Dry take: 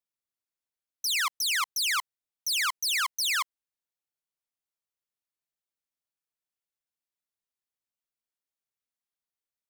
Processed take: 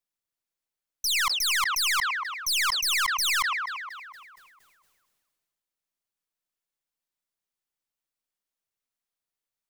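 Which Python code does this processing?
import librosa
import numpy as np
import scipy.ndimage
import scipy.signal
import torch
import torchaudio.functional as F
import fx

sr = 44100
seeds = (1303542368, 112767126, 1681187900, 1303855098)

p1 = np.where(x < 0.0, 10.0 ** (-3.0 / 20.0) * x, x)
p2 = p1 + fx.echo_wet_bandpass(p1, sr, ms=233, feedback_pct=38, hz=740.0, wet_db=-11.0, dry=0)
p3 = fx.sustainer(p2, sr, db_per_s=30.0)
y = p3 * 10.0 ** (3.5 / 20.0)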